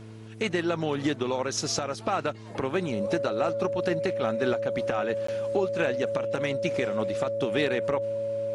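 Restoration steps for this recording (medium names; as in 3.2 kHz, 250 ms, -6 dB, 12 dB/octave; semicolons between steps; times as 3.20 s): de-hum 110.1 Hz, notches 4; band-stop 560 Hz, Q 30; interpolate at 5.27 s, 14 ms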